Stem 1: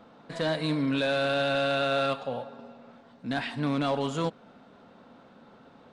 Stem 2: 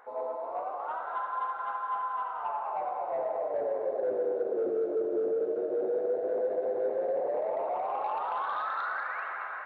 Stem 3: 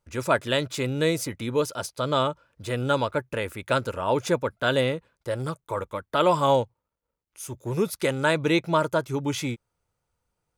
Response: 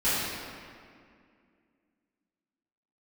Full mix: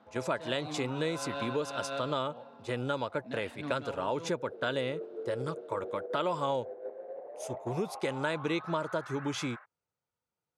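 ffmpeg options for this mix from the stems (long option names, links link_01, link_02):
-filter_complex "[0:a]volume=-9dB[link_01];[1:a]volume=6.5dB,afade=type=out:start_time=1.57:duration=0.67:silence=0.237137,afade=type=in:start_time=4.21:duration=0.59:silence=0.251189[link_02];[2:a]volume=-1dB,asplit=2[link_03][link_04];[link_04]apad=whole_len=261425[link_05];[link_01][link_05]sidechaincompress=threshold=-36dB:ratio=4:attack=23:release=156[link_06];[link_02][link_03]amix=inputs=2:normalize=0,agate=range=-9dB:threshold=-34dB:ratio=16:detection=peak,acompressor=threshold=-31dB:ratio=3,volume=0dB[link_07];[link_06][link_07]amix=inputs=2:normalize=0,highpass=130,lowpass=7500"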